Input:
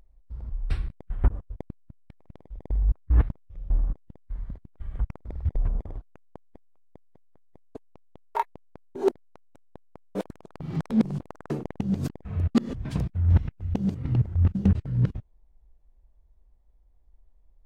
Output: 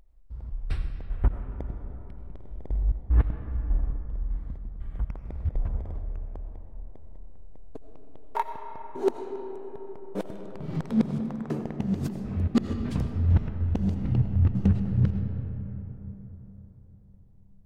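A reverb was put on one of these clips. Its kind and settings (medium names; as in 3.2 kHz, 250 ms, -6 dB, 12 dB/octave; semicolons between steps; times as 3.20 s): algorithmic reverb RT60 4.2 s, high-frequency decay 0.4×, pre-delay 45 ms, DRR 6 dB; trim -1.5 dB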